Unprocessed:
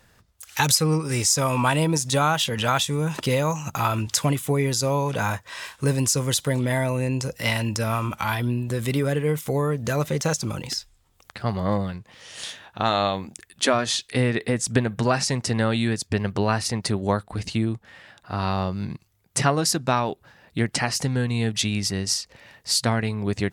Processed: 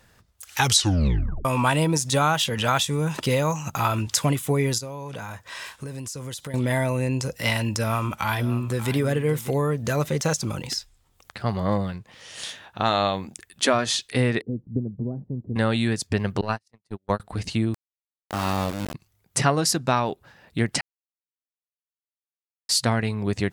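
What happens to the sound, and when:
0.58 s: tape stop 0.87 s
4.78–6.54 s: compression 8:1, threshold -31 dBFS
7.77–8.94 s: echo throw 590 ms, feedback 10%, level -13.5 dB
14.41–15.56 s: four-pole ladder low-pass 420 Hz, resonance 20%
16.41–17.20 s: gate -21 dBFS, range -48 dB
17.74–18.94 s: small samples zeroed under -26 dBFS
20.81–22.69 s: mute

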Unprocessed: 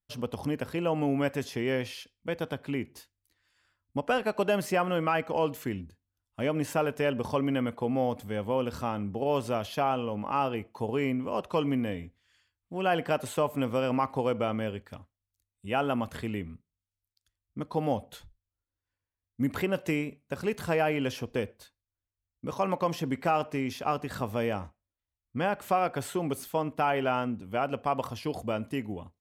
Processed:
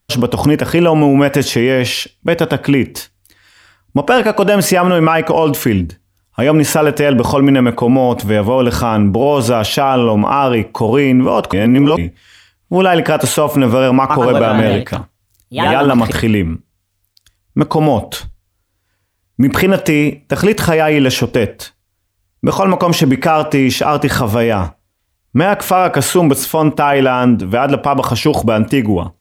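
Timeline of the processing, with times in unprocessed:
11.53–11.97 s: reverse
13.99–16.25 s: ever faster or slower copies 108 ms, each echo +2 st, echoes 2, each echo -6 dB
whole clip: loudness maximiser +25 dB; trim -1 dB

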